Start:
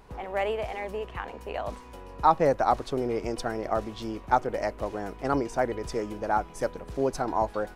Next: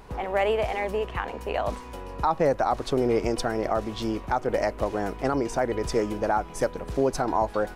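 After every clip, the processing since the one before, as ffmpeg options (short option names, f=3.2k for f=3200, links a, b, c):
-af "alimiter=limit=-19dB:level=0:latency=1:release=171,volume=6dB"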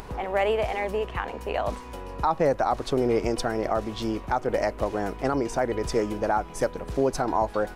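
-af "acompressor=mode=upward:threshold=-34dB:ratio=2.5"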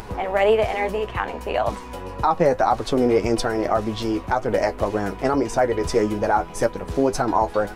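-af "flanger=delay=8.6:depth=3.8:regen=40:speed=1.8:shape=triangular,volume=8.5dB"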